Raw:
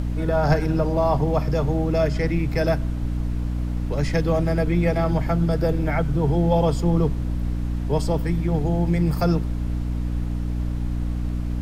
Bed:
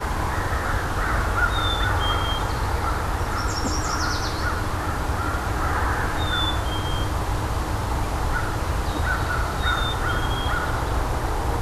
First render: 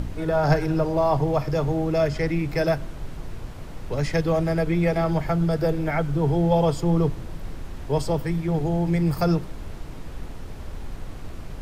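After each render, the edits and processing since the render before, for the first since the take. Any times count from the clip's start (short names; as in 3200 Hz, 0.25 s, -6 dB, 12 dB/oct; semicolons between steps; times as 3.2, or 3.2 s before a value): de-hum 60 Hz, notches 5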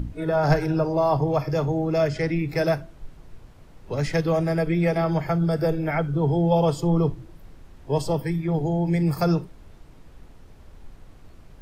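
noise print and reduce 12 dB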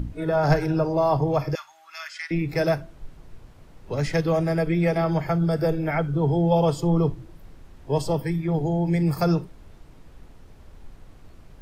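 1.55–2.31 inverse Chebyshev high-pass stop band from 490 Hz, stop band 50 dB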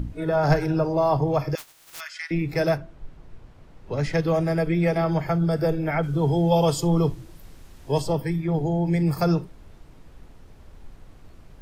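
1.57–1.99 spectral contrast lowered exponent 0.1; 2.76–4.22 LPF 2900 Hz -> 6100 Hz 6 dB/oct; 6.03–8 high shelf 3200 Hz +11 dB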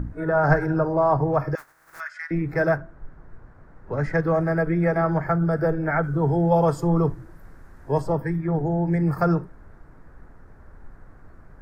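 resonant high shelf 2200 Hz -11 dB, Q 3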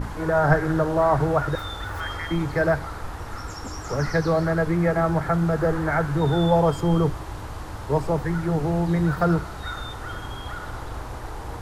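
add bed -10 dB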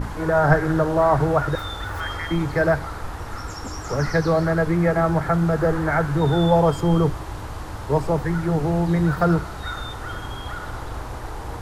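gain +2 dB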